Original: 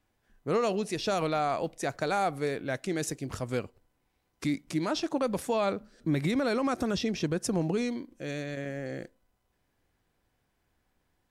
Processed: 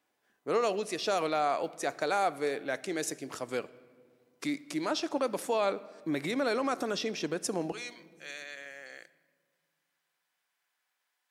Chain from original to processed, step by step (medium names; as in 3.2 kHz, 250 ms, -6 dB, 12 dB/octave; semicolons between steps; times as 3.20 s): high-pass 330 Hz 12 dB/octave, from 7.72 s 1.2 kHz; simulated room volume 2800 m³, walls mixed, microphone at 0.33 m